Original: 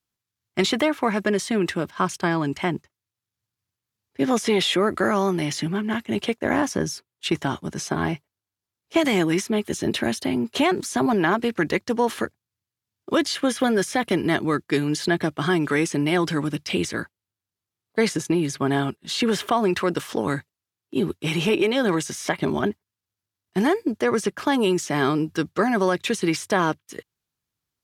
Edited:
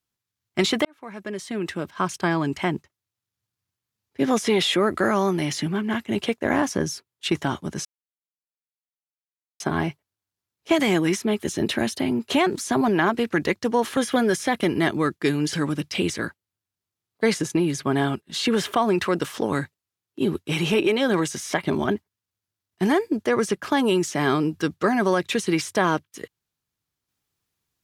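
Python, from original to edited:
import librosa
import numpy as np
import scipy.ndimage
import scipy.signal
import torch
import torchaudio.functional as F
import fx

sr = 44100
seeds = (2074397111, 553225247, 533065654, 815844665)

y = fx.edit(x, sr, fx.fade_in_span(start_s=0.85, length_s=1.44),
    fx.insert_silence(at_s=7.85, length_s=1.75),
    fx.cut(start_s=12.22, length_s=1.23),
    fx.cut(start_s=15.01, length_s=1.27), tone=tone)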